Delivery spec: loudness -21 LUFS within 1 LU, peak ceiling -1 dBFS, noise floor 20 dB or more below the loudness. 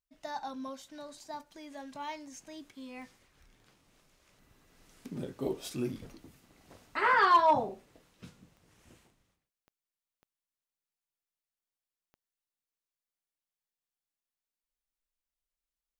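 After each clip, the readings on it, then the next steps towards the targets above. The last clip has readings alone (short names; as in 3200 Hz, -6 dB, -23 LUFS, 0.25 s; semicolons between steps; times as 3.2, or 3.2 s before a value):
clicks 5; loudness -30.5 LUFS; peak -15.5 dBFS; loudness target -21.0 LUFS
-> de-click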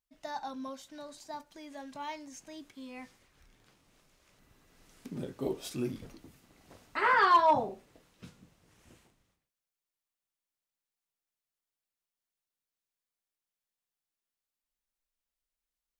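clicks 0; loudness -30.5 LUFS; peak -15.0 dBFS; loudness target -21.0 LUFS
-> gain +9.5 dB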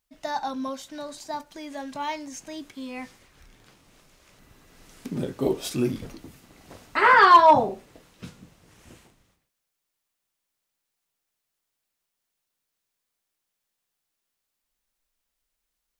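loudness -21.0 LUFS; peak -5.5 dBFS; noise floor -82 dBFS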